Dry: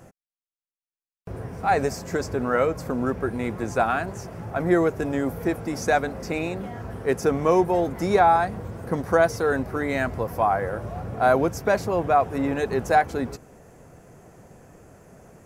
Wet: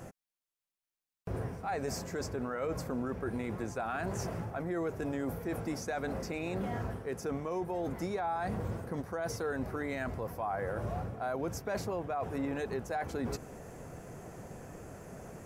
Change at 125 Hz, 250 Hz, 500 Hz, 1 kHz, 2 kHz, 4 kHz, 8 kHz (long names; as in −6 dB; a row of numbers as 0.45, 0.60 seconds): −7.5, −10.5, −13.0, −15.0, −13.0, −9.0, −7.0 decibels